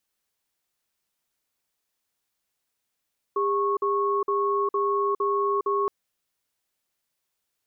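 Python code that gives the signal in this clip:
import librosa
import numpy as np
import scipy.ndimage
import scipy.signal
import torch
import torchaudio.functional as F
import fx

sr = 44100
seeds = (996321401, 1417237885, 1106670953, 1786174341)

y = fx.cadence(sr, length_s=2.52, low_hz=403.0, high_hz=1100.0, on_s=0.41, off_s=0.05, level_db=-24.0)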